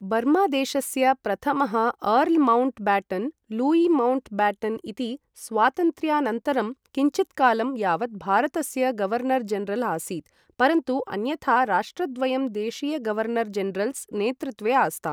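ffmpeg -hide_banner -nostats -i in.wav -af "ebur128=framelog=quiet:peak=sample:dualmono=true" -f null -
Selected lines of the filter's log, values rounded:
Integrated loudness:
  I:         -21.0 LUFS
  Threshold: -31.1 LUFS
Loudness range:
  LRA:         3.3 LU
  Threshold: -41.2 LUFS
  LRA low:   -22.6 LUFS
  LRA high:  -19.4 LUFS
Sample peak:
  Peak:       -7.1 dBFS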